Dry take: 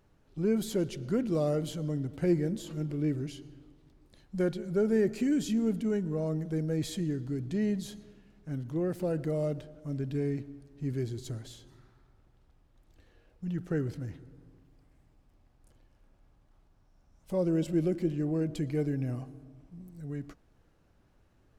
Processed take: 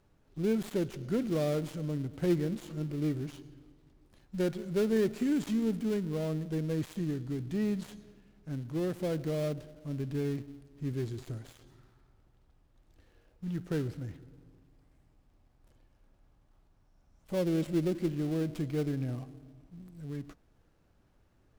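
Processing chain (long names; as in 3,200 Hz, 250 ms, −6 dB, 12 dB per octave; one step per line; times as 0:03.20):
gap after every zero crossing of 0.16 ms
level −1.5 dB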